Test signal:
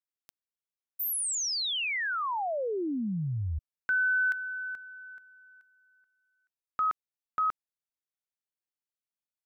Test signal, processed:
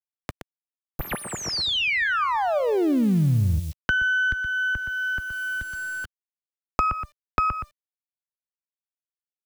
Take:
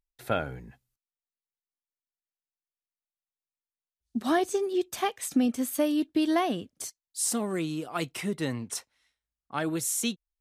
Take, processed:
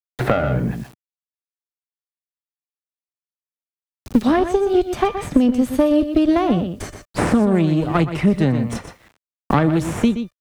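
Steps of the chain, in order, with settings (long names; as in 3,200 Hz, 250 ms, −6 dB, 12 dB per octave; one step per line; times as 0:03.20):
gain on one half-wave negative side −12 dB
high-pass filter 65 Hz 12 dB per octave
RIAA equalisation playback
tuned comb filter 600 Hz, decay 0.34 s, mix 60%
on a send: single-tap delay 121 ms −11 dB
on the sum: automatic gain control gain up to 9.5 dB
bit reduction 12 bits
multiband upward and downward compressor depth 100%
level +8 dB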